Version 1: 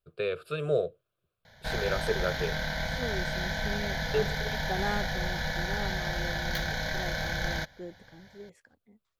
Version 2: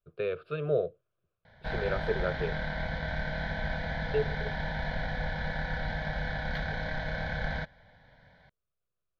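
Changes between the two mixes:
second voice: muted
master: add high-frequency loss of the air 330 metres

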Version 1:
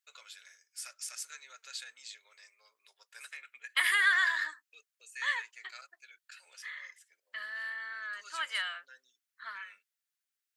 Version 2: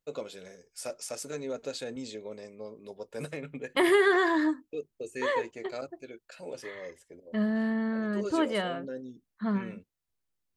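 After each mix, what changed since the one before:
second voice −3.5 dB
master: remove Chebyshev high-pass filter 1,500 Hz, order 3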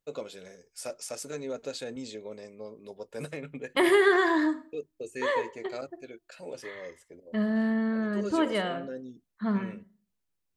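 reverb: on, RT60 0.40 s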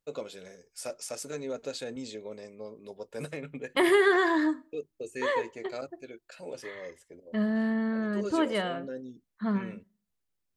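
second voice: send −8.5 dB

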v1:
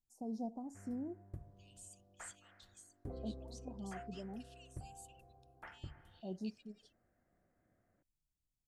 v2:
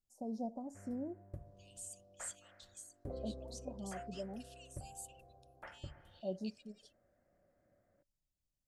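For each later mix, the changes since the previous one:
second voice: add high-shelf EQ 5,500 Hz +10.5 dB
master: add parametric band 570 Hz +13 dB 0.24 octaves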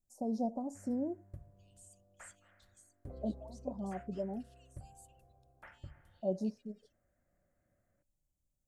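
first voice +6.0 dB
second voice −11.0 dB
background: add parametric band 500 Hz −7.5 dB 2.1 octaves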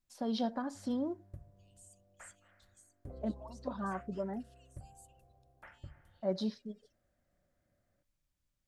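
first voice: remove Chebyshev band-stop filter 740–6,700 Hz, order 3

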